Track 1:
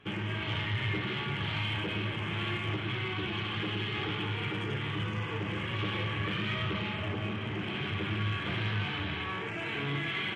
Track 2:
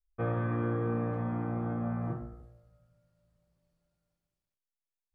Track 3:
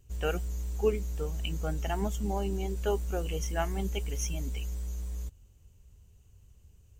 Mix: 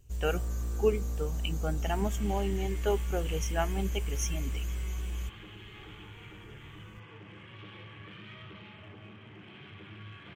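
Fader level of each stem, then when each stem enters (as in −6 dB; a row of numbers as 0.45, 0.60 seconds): −15.0, −16.0, +1.0 decibels; 1.80, 0.10, 0.00 seconds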